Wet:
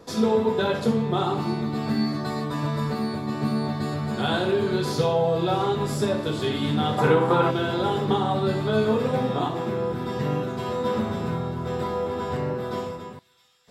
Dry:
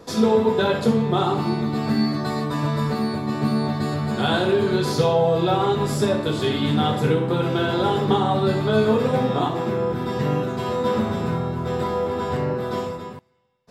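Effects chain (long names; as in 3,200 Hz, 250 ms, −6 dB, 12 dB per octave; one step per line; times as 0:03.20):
0:06.98–0:07.51: parametric band 1,000 Hz +13 dB 1.9 octaves
on a send: delay with a high-pass on its return 662 ms, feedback 73%, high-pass 3,500 Hz, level −16.5 dB
on the sum: level −3.5 dB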